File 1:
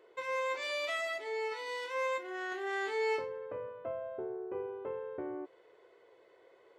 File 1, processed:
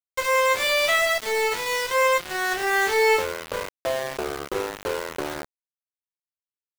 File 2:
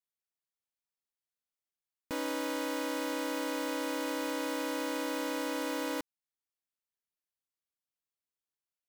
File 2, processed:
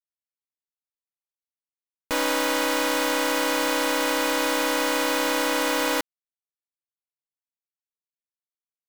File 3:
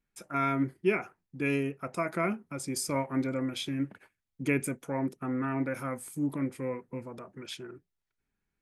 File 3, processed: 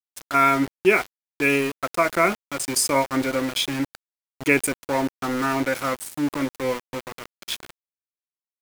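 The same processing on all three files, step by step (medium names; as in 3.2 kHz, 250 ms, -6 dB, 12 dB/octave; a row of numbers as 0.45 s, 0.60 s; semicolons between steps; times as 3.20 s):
peaking EQ 150 Hz -11.5 dB 2.1 oct; small samples zeroed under -40.5 dBFS; normalise loudness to -23 LUFS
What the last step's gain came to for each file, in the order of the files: +16.0 dB, +14.0 dB, +13.0 dB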